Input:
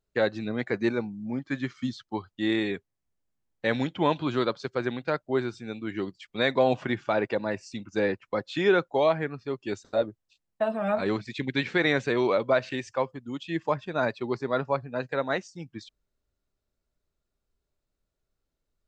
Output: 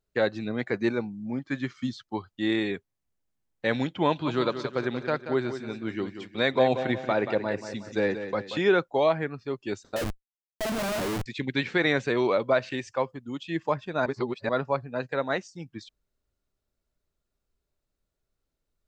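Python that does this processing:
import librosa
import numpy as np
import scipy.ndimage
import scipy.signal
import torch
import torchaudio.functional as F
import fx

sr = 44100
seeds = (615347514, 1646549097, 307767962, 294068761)

y = fx.echo_feedback(x, sr, ms=182, feedback_pct=43, wet_db=-10, at=(4.25, 8.59), fade=0.02)
y = fx.schmitt(y, sr, flips_db=-35.5, at=(9.96, 11.26))
y = fx.edit(y, sr, fx.reverse_span(start_s=14.06, length_s=0.43), tone=tone)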